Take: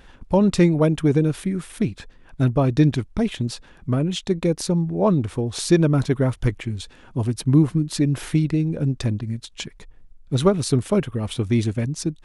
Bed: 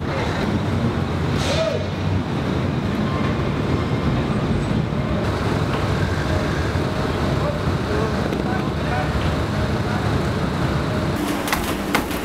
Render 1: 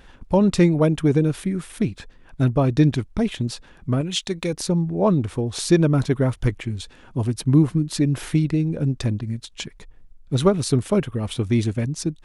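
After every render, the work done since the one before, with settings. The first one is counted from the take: 4.01–4.53 s: tilt shelf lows -6 dB, about 1.1 kHz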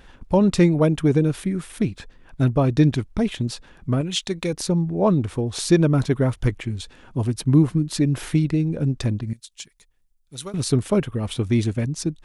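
9.33–10.54 s: pre-emphasis filter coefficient 0.9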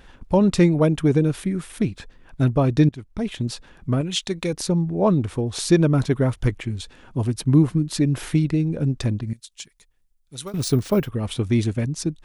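2.89–3.49 s: fade in, from -19.5 dB; 10.47–11.09 s: careless resampling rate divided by 3×, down none, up hold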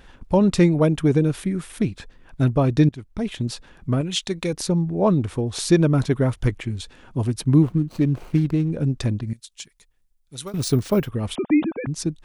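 7.62–8.71 s: median filter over 25 samples; 11.35–11.87 s: formants replaced by sine waves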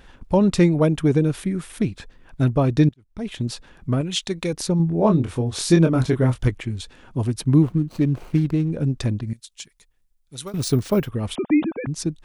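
2.94–3.38 s: fade in; 4.77–6.48 s: doubling 24 ms -5.5 dB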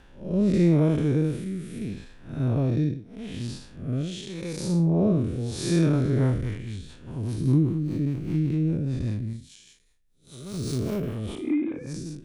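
spectral blur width 188 ms; rotary cabinet horn 0.8 Hz, later 5 Hz, at 5.66 s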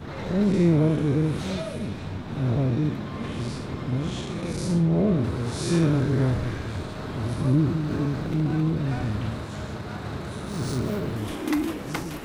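add bed -12.5 dB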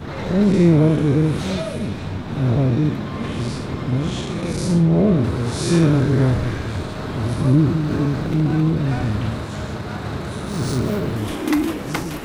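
trim +6 dB

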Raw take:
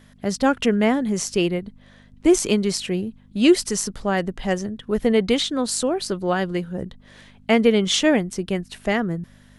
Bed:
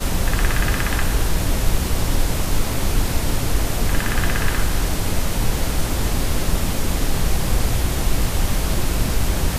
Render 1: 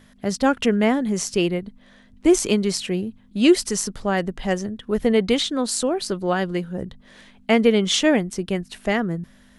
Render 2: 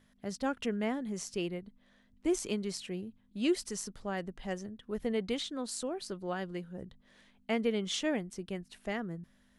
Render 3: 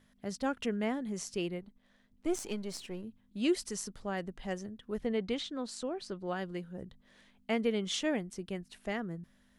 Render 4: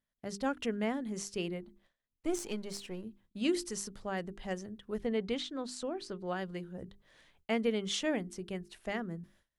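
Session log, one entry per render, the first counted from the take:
de-hum 50 Hz, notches 3
trim -14.5 dB
1.61–3.04 s: partial rectifier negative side -7 dB; 5.00–6.27 s: distance through air 63 m
hum notches 50/100/150/200/250/300/350/400 Hz; gate with hold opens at -56 dBFS

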